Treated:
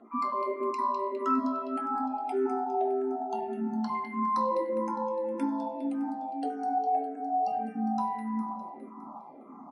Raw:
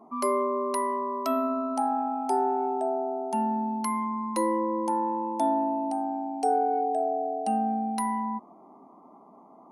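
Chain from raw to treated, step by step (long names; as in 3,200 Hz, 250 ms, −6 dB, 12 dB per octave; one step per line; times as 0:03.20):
time-frequency cells dropped at random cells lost 26%
low-shelf EQ 310 Hz −8.5 dB
in parallel at +1 dB: downward compressor, threshold −38 dBFS, peak gain reduction 15 dB
on the sum: brickwall limiter −22 dBFS, peak gain reduction 8 dB
reversed playback
upward compression, threshold −40 dBFS
reversed playback
high-frequency loss of the air 110 metres
repeating echo 204 ms, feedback 59%, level −10 dB
convolution reverb RT60 0.75 s, pre-delay 3 ms, DRR 1 dB
frequency shifter mixed with the dry sound −1.7 Hz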